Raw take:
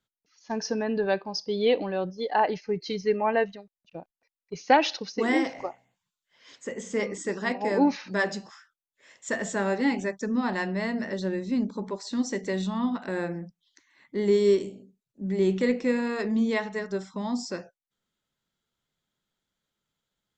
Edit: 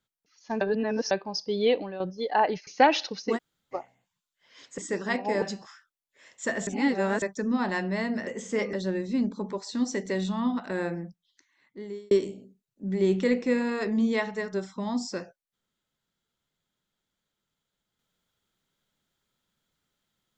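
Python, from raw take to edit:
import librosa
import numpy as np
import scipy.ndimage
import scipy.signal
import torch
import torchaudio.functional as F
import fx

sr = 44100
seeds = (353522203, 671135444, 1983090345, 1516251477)

y = fx.edit(x, sr, fx.reverse_span(start_s=0.61, length_s=0.5),
    fx.fade_out_to(start_s=1.66, length_s=0.34, floor_db=-10.5),
    fx.cut(start_s=2.67, length_s=1.9),
    fx.room_tone_fill(start_s=5.27, length_s=0.36, crossfade_s=0.04),
    fx.move(start_s=6.68, length_s=0.46, to_s=11.11),
    fx.cut(start_s=7.78, length_s=0.48),
    fx.reverse_span(start_s=9.51, length_s=0.55),
    fx.fade_out_span(start_s=13.38, length_s=1.11), tone=tone)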